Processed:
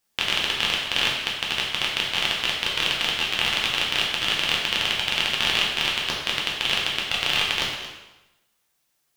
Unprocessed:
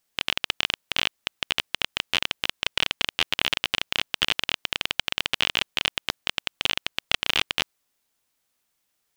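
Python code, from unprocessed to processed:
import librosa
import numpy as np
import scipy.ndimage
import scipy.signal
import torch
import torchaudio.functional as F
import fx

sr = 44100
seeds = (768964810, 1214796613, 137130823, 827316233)

y = fx.level_steps(x, sr, step_db=10)
y = y + 10.0 ** (-14.0 / 20.0) * np.pad(y, (int(226 * sr / 1000.0), 0))[:len(y)]
y = fx.rev_plate(y, sr, seeds[0], rt60_s=1.0, hf_ratio=0.9, predelay_ms=0, drr_db=-3.5)
y = y * librosa.db_to_amplitude(3.0)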